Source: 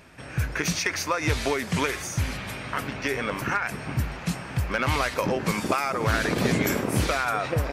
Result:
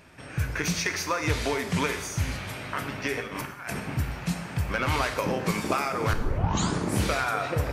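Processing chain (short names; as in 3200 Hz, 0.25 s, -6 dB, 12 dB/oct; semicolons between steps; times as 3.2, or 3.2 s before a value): 3.2–3.8 negative-ratio compressor -33 dBFS, ratio -0.5; 6.13 tape start 0.85 s; plate-style reverb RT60 0.91 s, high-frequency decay 1×, DRR 6.5 dB; gain -2.5 dB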